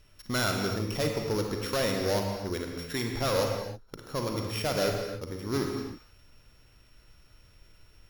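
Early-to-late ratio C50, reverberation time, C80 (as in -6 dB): 3.0 dB, no single decay rate, 4.0 dB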